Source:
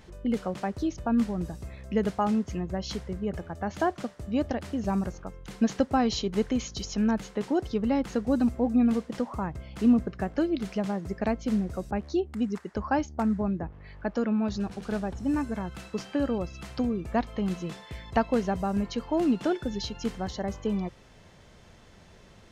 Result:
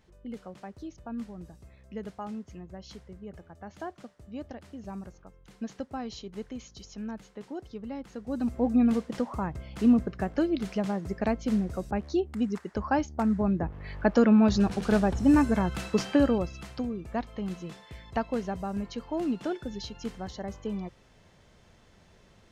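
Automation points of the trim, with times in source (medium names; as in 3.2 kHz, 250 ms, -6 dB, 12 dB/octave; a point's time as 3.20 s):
8.16 s -12 dB
8.64 s 0 dB
13.26 s 0 dB
13.93 s +7 dB
16.09 s +7 dB
16.86 s -5 dB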